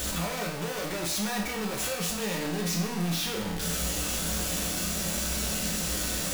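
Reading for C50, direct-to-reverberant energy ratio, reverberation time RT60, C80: 5.0 dB, -2.0 dB, 0.70 s, 8.0 dB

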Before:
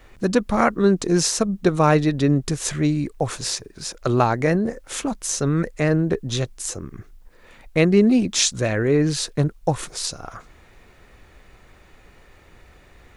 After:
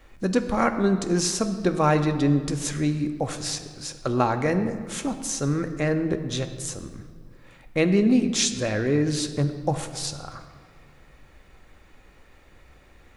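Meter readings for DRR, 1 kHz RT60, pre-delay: 7.0 dB, 1.8 s, 4 ms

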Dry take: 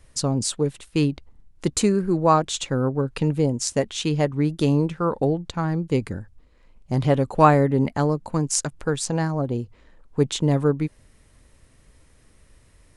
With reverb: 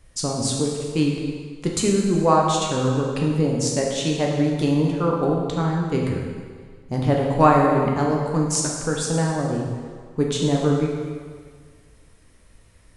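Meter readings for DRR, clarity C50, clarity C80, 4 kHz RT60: -1.5 dB, 1.5 dB, 3.0 dB, 1.5 s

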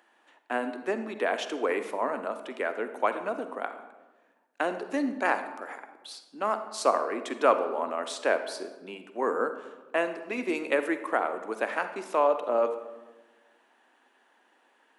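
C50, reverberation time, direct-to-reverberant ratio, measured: 10.0 dB, 1.2 s, 9.0 dB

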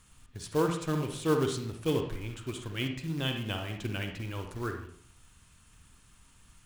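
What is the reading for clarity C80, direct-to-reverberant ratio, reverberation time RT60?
9.5 dB, 4.5 dB, 0.55 s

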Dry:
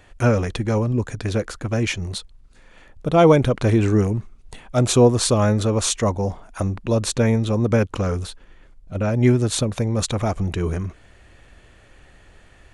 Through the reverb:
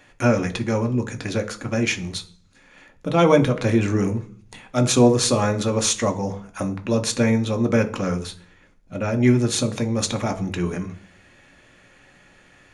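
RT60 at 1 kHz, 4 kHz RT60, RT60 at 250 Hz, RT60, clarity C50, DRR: 0.40 s, 0.50 s, 0.65 s, 0.45 s, 15.5 dB, 5.0 dB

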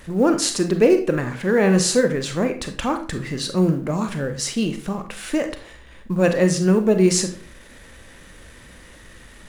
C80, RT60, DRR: 15.0 dB, 0.45 s, 6.5 dB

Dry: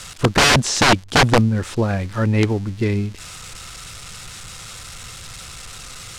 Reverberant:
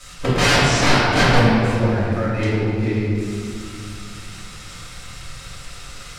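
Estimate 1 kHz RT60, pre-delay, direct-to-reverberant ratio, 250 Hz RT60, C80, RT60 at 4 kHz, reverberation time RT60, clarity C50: 2.3 s, 3 ms, -12.0 dB, 3.3 s, -1.0 dB, 1.5 s, 2.4 s, -3.0 dB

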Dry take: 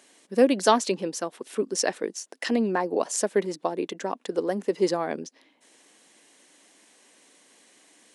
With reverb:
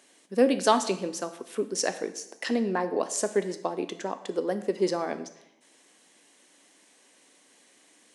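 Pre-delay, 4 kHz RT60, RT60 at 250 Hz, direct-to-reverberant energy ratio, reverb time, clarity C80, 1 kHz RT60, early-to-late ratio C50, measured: 6 ms, 0.75 s, 0.85 s, 10.0 dB, 0.80 s, 15.0 dB, 0.85 s, 13.0 dB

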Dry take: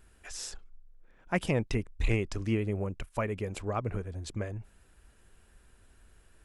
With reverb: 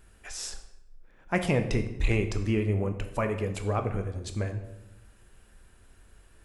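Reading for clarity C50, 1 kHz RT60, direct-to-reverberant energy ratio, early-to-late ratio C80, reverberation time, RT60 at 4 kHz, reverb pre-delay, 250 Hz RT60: 10.0 dB, 0.80 s, 6.0 dB, 12.0 dB, 0.90 s, 0.65 s, 12 ms, 1.1 s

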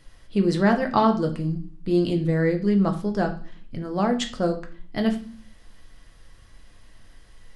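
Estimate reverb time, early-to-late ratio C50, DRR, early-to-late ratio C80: 0.45 s, 12.0 dB, 4.0 dB, 16.0 dB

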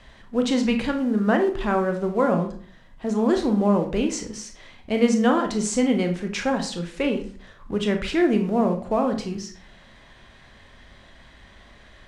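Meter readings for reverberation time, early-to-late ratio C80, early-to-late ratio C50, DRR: 0.45 s, 14.5 dB, 9.5 dB, 4.5 dB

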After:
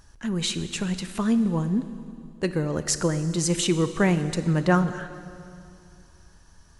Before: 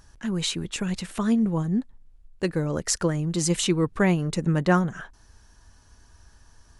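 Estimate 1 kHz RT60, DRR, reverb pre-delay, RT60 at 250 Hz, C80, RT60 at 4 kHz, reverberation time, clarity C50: 2.4 s, 11.0 dB, 20 ms, 2.9 s, 12.5 dB, 2.4 s, 2.5 s, 12.0 dB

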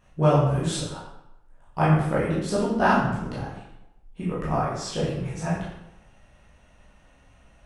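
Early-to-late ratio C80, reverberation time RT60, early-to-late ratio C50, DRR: 4.5 dB, 0.85 s, 1.5 dB, -9.0 dB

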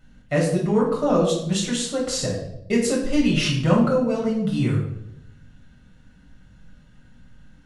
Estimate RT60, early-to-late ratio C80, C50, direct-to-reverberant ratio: 0.80 s, 8.0 dB, 4.5 dB, -4.5 dB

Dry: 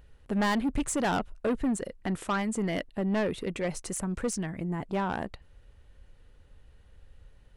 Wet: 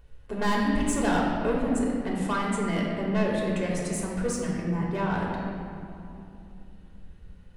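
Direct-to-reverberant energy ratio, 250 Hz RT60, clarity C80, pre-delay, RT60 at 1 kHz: -4.0 dB, 4.2 s, 1.5 dB, 3 ms, 2.6 s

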